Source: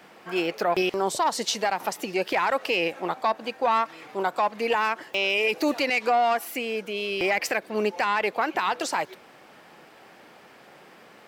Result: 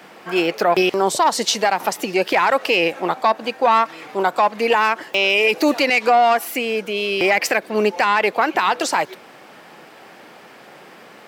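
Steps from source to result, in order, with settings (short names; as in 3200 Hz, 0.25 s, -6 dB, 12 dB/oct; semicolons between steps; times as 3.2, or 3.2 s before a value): HPF 110 Hz; gain +7.5 dB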